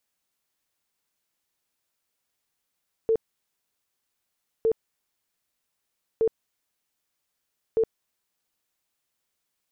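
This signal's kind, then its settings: tone bursts 448 Hz, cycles 30, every 1.56 s, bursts 4, -18 dBFS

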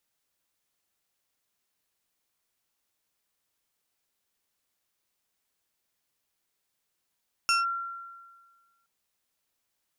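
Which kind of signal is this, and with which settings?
FM tone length 1.37 s, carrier 1.37 kHz, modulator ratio 2.97, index 1.4, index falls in 0.16 s linear, decay 1.55 s, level -19.5 dB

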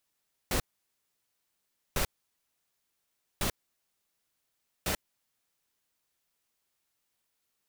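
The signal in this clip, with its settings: noise bursts pink, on 0.09 s, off 1.36 s, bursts 4, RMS -29 dBFS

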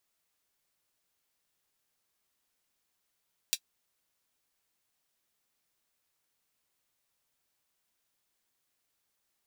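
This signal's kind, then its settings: closed hi-hat, high-pass 3.4 kHz, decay 0.07 s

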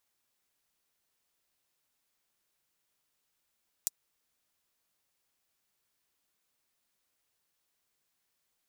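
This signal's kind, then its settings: closed hi-hat, high-pass 6.3 kHz, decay 0.03 s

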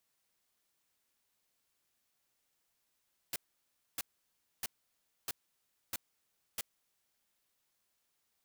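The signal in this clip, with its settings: noise bursts white, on 0.03 s, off 0.62 s, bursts 6, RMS -37 dBFS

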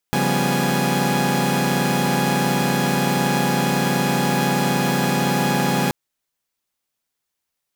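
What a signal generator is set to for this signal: chord C#3/F3/G3/B3/G#5 saw, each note -21.5 dBFS 5.78 s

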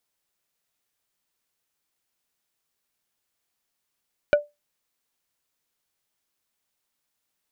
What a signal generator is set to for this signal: wood hit plate, lowest mode 588 Hz, decay 0.20 s, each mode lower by 6.5 dB, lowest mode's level -10 dB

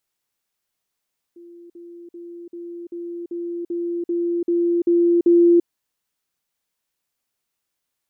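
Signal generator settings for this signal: level ladder 344 Hz -40 dBFS, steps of 3 dB, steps 11, 0.34 s 0.05 s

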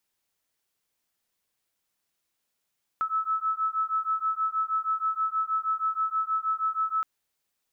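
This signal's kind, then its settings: beating tones 1.3 kHz, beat 6.3 Hz, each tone -28 dBFS 4.02 s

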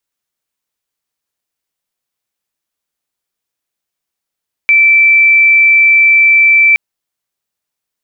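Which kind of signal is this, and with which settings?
tone sine 2.33 kHz -4 dBFS 2.07 s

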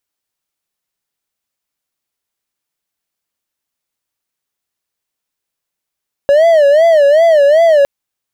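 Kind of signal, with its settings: siren wail 560–674 Hz 2.6 per s triangle -3 dBFS 1.56 s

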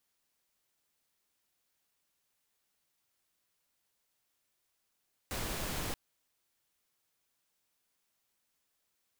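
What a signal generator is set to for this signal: noise pink, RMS -37 dBFS 0.63 s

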